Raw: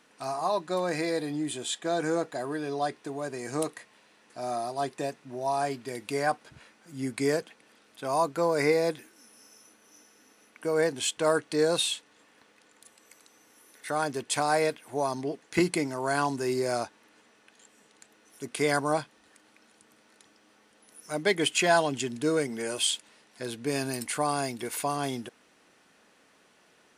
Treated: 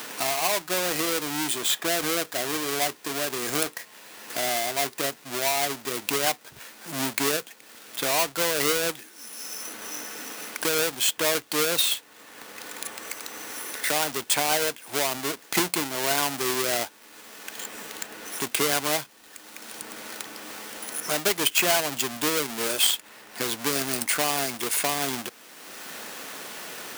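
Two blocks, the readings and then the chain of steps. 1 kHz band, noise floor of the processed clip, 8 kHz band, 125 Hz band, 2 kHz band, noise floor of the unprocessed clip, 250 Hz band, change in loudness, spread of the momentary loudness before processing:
+0.5 dB, −51 dBFS, +9.5 dB, −3.0 dB, +5.5 dB, −62 dBFS, −1.5 dB, +3.5 dB, 11 LU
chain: each half-wave held at its own peak
spectral tilt +2.5 dB per octave
multiband upward and downward compressor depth 70%
level −2 dB

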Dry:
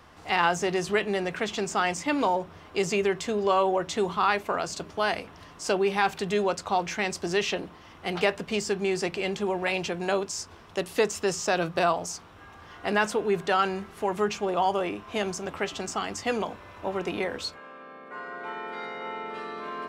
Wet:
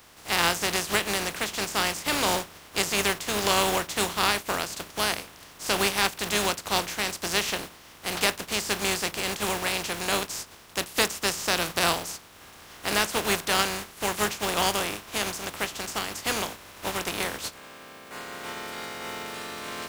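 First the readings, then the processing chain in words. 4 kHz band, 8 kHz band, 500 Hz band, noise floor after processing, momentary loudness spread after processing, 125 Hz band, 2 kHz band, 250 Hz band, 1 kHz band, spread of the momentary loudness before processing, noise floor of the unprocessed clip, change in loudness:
+8.0 dB, +8.0 dB, −4.5 dB, −49 dBFS, 12 LU, −0.5 dB, +2.5 dB, −3.0 dB, −1.5 dB, 11 LU, −49 dBFS, +1.0 dB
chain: compressing power law on the bin magnitudes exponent 0.37

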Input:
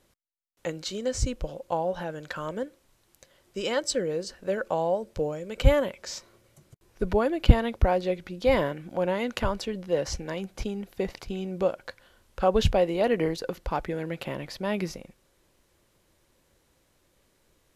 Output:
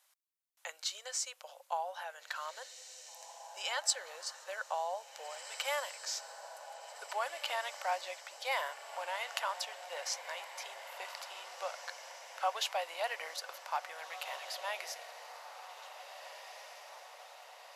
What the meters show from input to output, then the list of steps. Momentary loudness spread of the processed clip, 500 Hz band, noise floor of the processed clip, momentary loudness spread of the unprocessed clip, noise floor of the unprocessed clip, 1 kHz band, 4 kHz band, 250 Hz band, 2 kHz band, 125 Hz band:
14 LU, −16.5 dB, −62 dBFS, 12 LU, −68 dBFS, −5.0 dB, −2.0 dB, below −40 dB, −3.5 dB, below −40 dB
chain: Butterworth high-pass 710 Hz 36 dB per octave
high-shelf EQ 5,900 Hz +7 dB
feedback delay with all-pass diffusion 1,846 ms, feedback 61%, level −10.5 dB
level −4.5 dB

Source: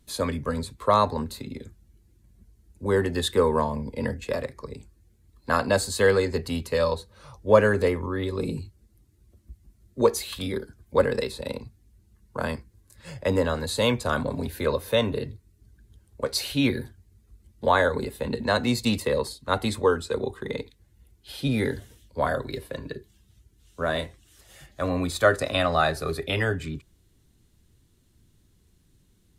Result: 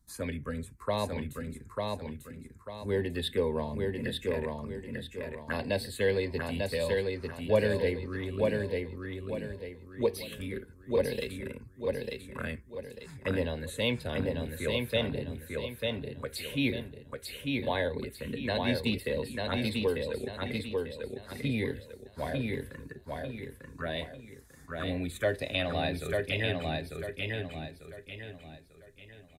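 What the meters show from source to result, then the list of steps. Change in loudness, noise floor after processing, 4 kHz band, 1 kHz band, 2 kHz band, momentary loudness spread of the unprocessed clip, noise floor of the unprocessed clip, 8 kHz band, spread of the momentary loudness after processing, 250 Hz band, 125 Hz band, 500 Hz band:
−7.5 dB, −55 dBFS, −4.5 dB, −12.5 dB, −6.0 dB, 16 LU, −63 dBFS, −11.0 dB, 13 LU, −5.0 dB, −4.5 dB, −6.5 dB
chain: dynamic equaliser 2,100 Hz, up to +5 dB, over −40 dBFS, Q 1.1
phaser swept by the level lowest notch 470 Hz, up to 1,300 Hz, full sweep at −20.5 dBFS
repeating echo 895 ms, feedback 36%, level −3 dB
level −6.5 dB

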